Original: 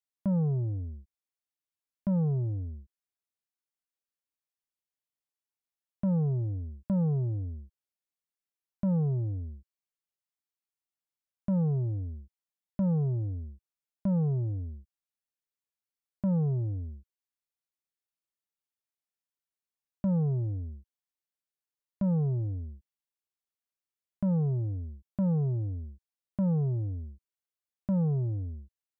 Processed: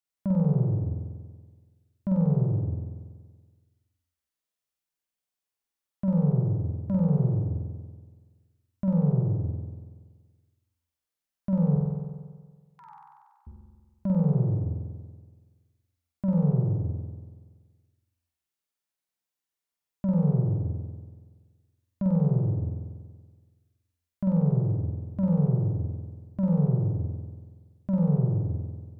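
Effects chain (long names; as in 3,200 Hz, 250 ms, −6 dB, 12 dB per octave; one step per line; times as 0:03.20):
0:11.76–0:13.47: linear-phase brick-wall high-pass 780 Hz
flutter between parallel walls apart 8.1 metres, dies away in 1.5 s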